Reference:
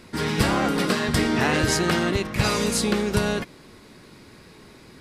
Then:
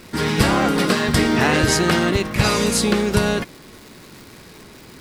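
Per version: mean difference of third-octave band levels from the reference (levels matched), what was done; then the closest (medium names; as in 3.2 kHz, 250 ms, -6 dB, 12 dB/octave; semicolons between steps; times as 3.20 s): 1.0 dB: crackle 520 per s -38 dBFS; trim +4.5 dB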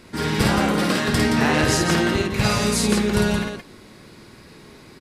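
2.5 dB: loudspeakers at several distances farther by 18 m -3 dB, 59 m -6 dB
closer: first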